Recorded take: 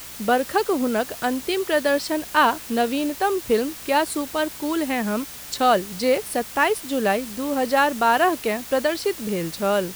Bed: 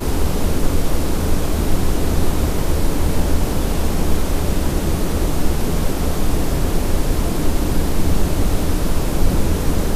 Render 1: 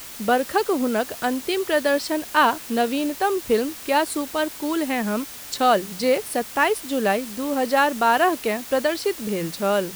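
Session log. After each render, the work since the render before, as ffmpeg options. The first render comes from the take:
ffmpeg -i in.wav -af "bandreject=frequency=60:width_type=h:width=4,bandreject=frequency=120:width_type=h:width=4,bandreject=frequency=180:width_type=h:width=4" out.wav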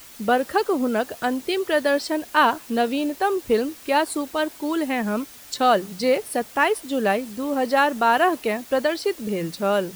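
ffmpeg -i in.wav -af "afftdn=noise_reduction=7:noise_floor=-38" out.wav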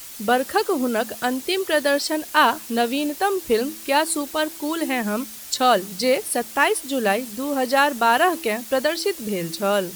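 ffmpeg -i in.wav -af "equalizer=frequency=12000:width_type=o:width=2.7:gain=8,bandreject=frequency=109.5:width_type=h:width=4,bandreject=frequency=219:width_type=h:width=4,bandreject=frequency=328.5:width_type=h:width=4" out.wav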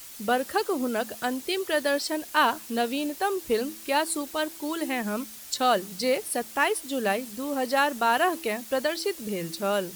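ffmpeg -i in.wav -af "volume=-5.5dB" out.wav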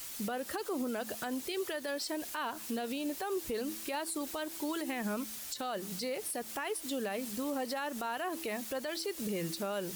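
ffmpeg -i in.wav -af "acompressor=threshold=-26dB:ratio=6,alimiter=level_in=3.5dB:limit=-24dB:level=0:latency=1:release=109,volume=-3.5dB" out.wav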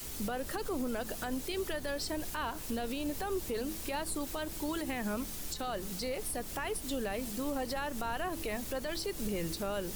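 ffmpeg -i in.wav -i bed.wav -filter_complex "[1:a]volume=-28.5dB[link_01];[0:a][link_01]amix=inputs=2:normalize=0" out.wav

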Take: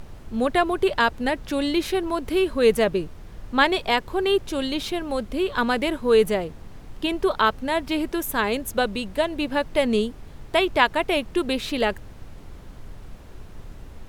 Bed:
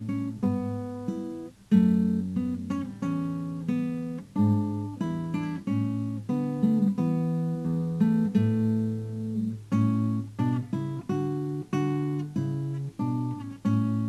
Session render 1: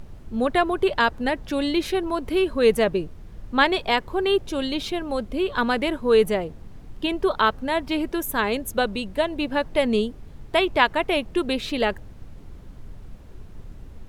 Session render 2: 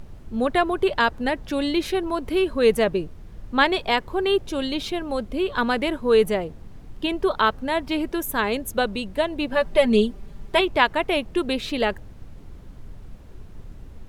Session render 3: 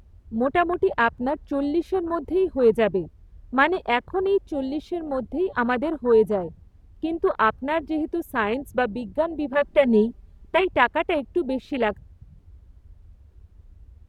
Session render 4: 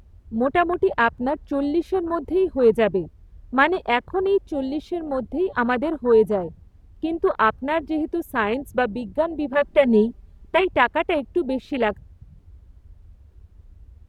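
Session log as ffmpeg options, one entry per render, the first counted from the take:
ffmpeg -i in.wav -af "afftdn=noise_reduction=6:noise_floor=-43" out.wav
ffmpeg -i in.wav -filter_complex "[0:a]asettb=1/sr,asplit=3[link_01][link_02][link_03];[link_01]atrim=end=9.524[link_04];[link_02]atrim=start=9.52:end=10.61,asetpts=PTS-STARTPTS,afade=type=in:duration=0.004:curve=qsin,afade=type=out:start_time=1.086:duration=0.004:curve=qsin,aecho=1:1:5.1:0.75,atrim=end_sample=48069[link_05];[link_03]atrim=start=10.606[link_06];[link_04][link_05]acrossfade=duration=0.004:curve1=hsin:curve2=qsin[link_07];[link_07][link_06]acrossfade=duration=0.004:curve1=qsin:curve2=hsin" out.wav
ffmpeg -i in.wav -af "afwtdn=0.0447,highpass=53" out.wav
ffmpeg -i in.wav -af "volume=1.5dB,alimiter=limit=-3dB:level=0:latency=1" out.wav

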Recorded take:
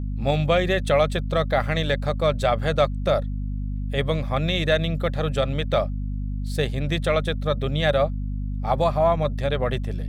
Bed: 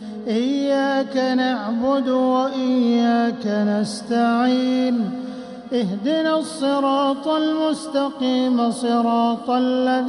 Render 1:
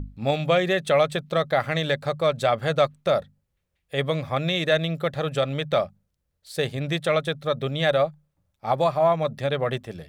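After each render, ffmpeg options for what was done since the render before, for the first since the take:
ffmpeg -i in.wav -af "bandreject=frequency=50:width_type=h:width=6,bandreject=frequency=100:width_type=h:width=6,bandreject=frequency=150:width_type=h:width=6,bandreject=frequency=200:width_type=h:width=6,bandreject=frequency=250:width_type=h:width=6" out.wav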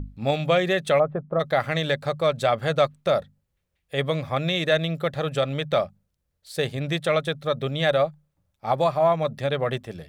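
ffmpeg -i in.wav -filter_complex "[0:a]asplit=3[link_01][link_02][link_03];[link_01]afade=type=out:start_time=0.98:duration=0.02[link_04];[link_02]lowpass=frequency=1200:width=0.5412,lowpass=frequency=1200:width=1.3066,afade=type=in:start_time=0.98:duration=0.02,afade=type=out:start_time=1.39:duration=0.02[link_05];[link_03]afade=type=in:start_time=1.39:duration=0.02[link_06];[link_04][link_05][link_06]amix=inputs=3:normalize=0" out.wav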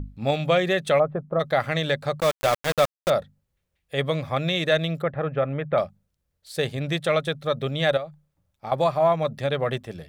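ffmpeg -i in.wav -filter_complex "[0:a]asettb=1/sr,asplit=3[link_01][link_02][link_03];[link_01]atrim=end=2.204[link_04];[link_02]atrim=start=2.2:end=3.1,asetpts=PTS-STARTPTS,afade=type=in:duration=0.004:curve=qsin,afade=type=out:start_time=0.896:duration=0.004:curve=qsin,aeval=exprs='val(0)*gte(abs(val(0)),0.075)':channel_layout=same[link_05];[link_03]atrim=start=3.096[link_06];[link_04][link_05]acrossfade=duration=0.004:curve1=hsin:curve2=qsin[link_07];[link_07][link_06]acrossfade=duration=0.004:curve1=qsin:curve2=hsin,asettb=1/sr,asplit=3[link_08][link_09][link_10];[link_08]atrim=end=5.024[link_11];[link_09]atrim=start=5.02:end=5.78,asetpts=PTS-STARTPTS,afade=type=in:duration=0.004:curve=qsin,afade=type=out:start_time=0.756:duration=0.004:curve=qsin,lowpass=frequency=2100:width=0.5412,lowpass=frequency=2100:width=1.3066[link_12];[link_10]atrim=start=5.776[link_13];[link_11][link_12]acrossfade=duration=0.004:curve1=hsin:curve2=qsin[link_14];[link_14][link_13]acrossfade=duration=0.004:curve1=qsin:curve2=hsin,asettb=1/sr,asplit=3[link_15][link_16][link_17];[link_15]atrim=end=7.974[link_18];[link_16]atrim=start=7.97:end=8.72,asetpts=PTS-STARTPTS,afade=type=in:duration=0.004:curve=qsin,afade=type=out:start_time=0.746:duration=0.004:curve=qsin,acompressor=threshold=-29dB:ratio=6:attack=3.2:release=140:knee=1:detection=peak[link_19];[link_17]atrim=start=8.716[link_20];[link_18][link_19]acrossfade=duration=0.004:curve1=hsin:curve2=qsin[link_21];[link_21][link_20]acrossfade=duration=0.004:curve1=qsin:curve2=hsin" out.wav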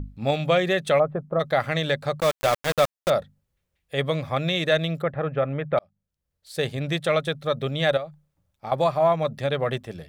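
ffmpeg -i in.wav -filter_complex "[0:a]asplit=2[link_01][link_02];[link_01]atrim=end=5.79,asetpts=PTS-STARTPTS,afade=type=out:start_time=5.786:duration=0.004:curve=hsin[link_03];[link_02]atrim=start=5.79,asetpts=PTS-STARTPTS,afade=type=in:duration=0.87[link_04];[link_03][link_04]concat=n=2:v=0:a=1" out.wav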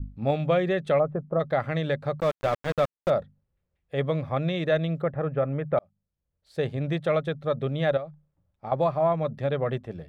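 ffmpeg -i in.wav -af "lowpass=frequency=1000:poles=1,adynamicequalizer=threshold=0.02:dfrequency=740:dqfactor=1.4:tfrequency=740:tqfactor=1.4:attack=5:release=100:ratio=0.375:range=2:mode=cutabove:tftype=bell" out.wav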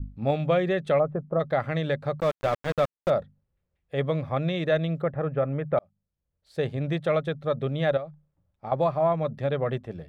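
ffmpeg -i in.wav -af anull out.wav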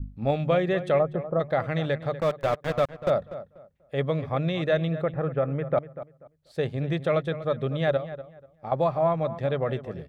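ffmpeg -i in.wav -filter_complex "[0:a]asplit=2[link_01][link_02];[link_02]adelay=243,lowpass=frequency=2400:poles=1,volume=-13.5dB,asplit=2[link_03][link_04];[link_04]adelay=243,lowpass=frequency=2400:poles=1,volume=0.24,asplit=2[link_05][link_06];[link_06]adelay=243,lowpass=frequency=2400:poles=1,volume=0.24[link_07];[link_01][link_03][link_05][link_07]amix=inputs=4:normalize=0" out.wav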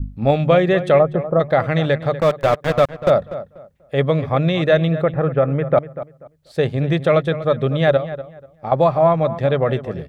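ffmpeg -i in.wav -af "volume=9dB" out.wav

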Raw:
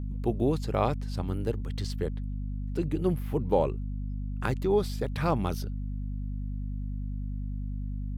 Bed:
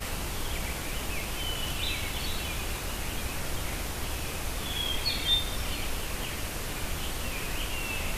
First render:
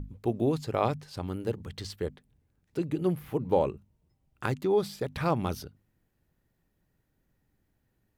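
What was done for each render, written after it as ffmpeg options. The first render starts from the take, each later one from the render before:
ffmpeg -i in.wav -af "bandreject=frequency=50:width_type=h:width=6,bandreject=frequency=100:width_type=h:width=6,bandreject=frequency=150:width_type=h:width=6,bandreject=frequency=200:width_type=h:width=6,bandreject=frequency=250:width_type=h:width=6" out.wav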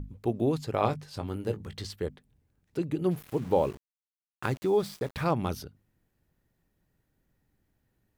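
ffmpeg -i in.wav -filter_complex "[0:a]asettb=1/sr,asplit=3[link_01][link_02][link_03];[link_01]atrim=end=0.764[link_04];[link_02]atrim=start=0.76:end=1.86,asetpts=PTS-STARTPTS,afade=type=in:duration=0.004:curve=qsin,afade=type=out:start_time=1.096:duration=0.004:curve=qsin,asplit=2[link_05][link_06];[link_06]adelay=19,volume=-9dB[link_07];[link_05][link_07]amix=inputs=2:normalize=0,atrim=end_sample=48510[link_08];[link_03]atrim=start=1.856[link_09];[link_04][link_08]acrossfade=duration=0.004:curve1=hsin:curve2=qsin[link_10];[link_10][link_09]acrossfade=duration=0.004:curve1=qsin:curve2=hsin,asettb=1/sr,asplit=3[link_11][link_12][link_13];[link_11]atrim=end=3.114[link_14];[link_12]atrim=start=3.11:end=5.24,asetpts=PTS-STARTPTS,afade=type=in:duration=0.004:curve=qsin,afade=type=out:start_time=2.126:duration=0.004:curve=qsin,aeval=exprs='val(0)*gte(abs(val(0)),0.00708)':channel_layout=same[link_15];[link_13]atrim=start=5.236[link_16];[link_14][link_15]acrossfade=duration=0.004:curve1=hsin:curve2=qsin[link_17];[link_17][link_16]acrossfade=duration=0.004:curve1=qsin:curve2=hsin" out.wav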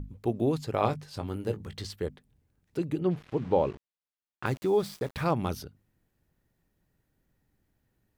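ffmpeg -i in.wav -filter_complex "[0:a]asettb=1/sr,asplit=3[link_01][link_02][link_03];[link_01]atrim=end=2.994[link_04];[link_02]atrim=start=2.99:end=4.46,asetpts=PTS-STARTPTS,afade=type=in:duration=0.004:curve=qsin,afade=type=out:start_time=1.466:duration=0.004:curve=qsin,lowpass=4100[link_05];[link_03]atrim=start=4.456[link_06];[link_04][link_05]acrossfade=duration=0.004:curve1=hsin:curve2=qsin[link_07];[link_07][link_06]acrossfade=duration=0.004:curve1=qsin:curve2=hsin" out.wav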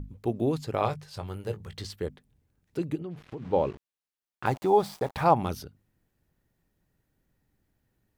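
ffmpeg -i in.wav -filter_complex "[0:a]asettb=1/sr,asplit=3[link_01][link_02][link_03];[link_01]atrim=end=0.834[link_04];[link_02]atrim=start=0.83:end=1.78,asetpts=PTS-STARTPTS,afade=type=in:duration=0.004:curve=qsin,afade=type=out:start_time=0.946:duration=0.004:curve=qsin,equalizer=frequency=270:width=2.4:gain=-12.5[link_05];[link_03]atrim=start=1.776[link_06];[link_04][link_05]acrossfade=duration=0.004:curve1=hsin:curve2=qsin[link_07];[link_07][link_06]acrossfade=duration=0.004:curve1=qsin:curve2=hsin,asplit=3[link_08][link_09][link_10];[link_08]afade=type=out:start_time=2.95:duration=0.02[link_11];[link_09]acompressor=threshold=-34dB:ratio=6:attack=3.2:release=140:knee=1:detection=peak,afade=type=in:start_time=2.95:duration=0.02,afade=type=out:start_time=3.52:duration=0.02[link_12];[link_10]afade=type=in:start_time=3.52:duration=0.02[link_13];[link_11][link_12][link_13]amix=inputs=3:normalize=0,asettb=1/sr,asplit=3[link_14][link_15][link_16];[link_14]atrim=end=4.474[link_17];[link_15]atrim=start=4.47:end=5.43,asetpts=PTS-STARTPTS,afade=type=in:duration=0.004:curve=qsin,afade=type=out:start_time=0.956:duration=0.004:curve=qsin,equalizer=frequency=810:width_type=o:width=0.77:gain=13[link_18];[link_16]atrim=start=5.426[link_19];[link_17][link_18]acrossfade=duration=0.004:curve1=hsin:curve2=qsin[link_20];[link_20][link_19]acrossfade=duration=0.004:curve1=qsin:curve2=hsin" out.wav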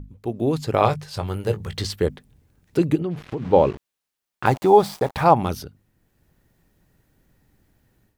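ffmpeg -i in.wav -af "dynaudnorm=framelen=350:gausssize=3:maxgain=11.5dB" out.wav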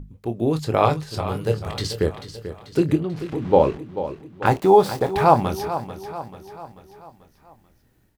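ffmpeg -i in.wav -filter_complex "[0:a]asplit=2[link_01][link_02];[link_02]adelay=26,volume=-10dB[link_03];[link_01][link_03]amix=inputs=2:normalize=0,aecho=1:1:439|878|1317|1756|2195:0.251|0.126|0.0628|0.0314|0.0157" out.wav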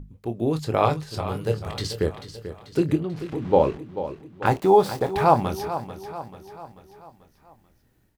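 ffmpeg -i in.wav -af "volume=-2.5dB" out.wav

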